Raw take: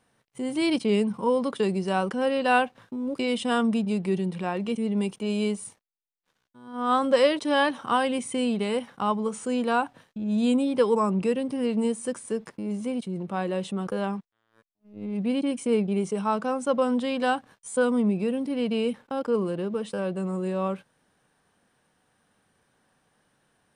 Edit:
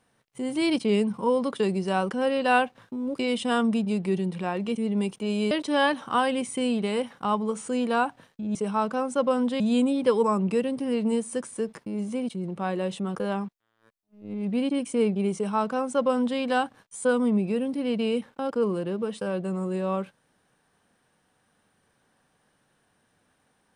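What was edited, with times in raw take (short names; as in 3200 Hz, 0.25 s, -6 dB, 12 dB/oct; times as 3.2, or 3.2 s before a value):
5.51–7.28 cut
16.06–17.11 copy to 10.32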